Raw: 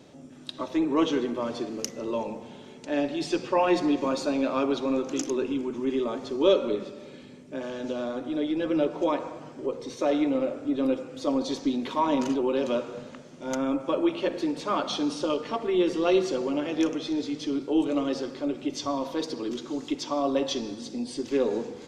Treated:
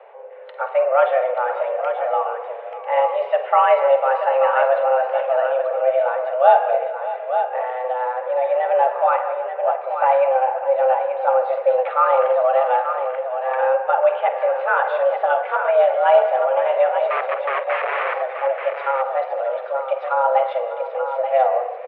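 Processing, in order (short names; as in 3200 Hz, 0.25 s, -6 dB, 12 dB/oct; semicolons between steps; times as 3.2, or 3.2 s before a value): 17.08–18.15 wrapped overs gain 24.5 dB; mistuned SSB +260 Hz 190–2200 Hz; tapped delay 49/194/597/883 ms -12.5/-17/-15/-8 dB; gain +8 dB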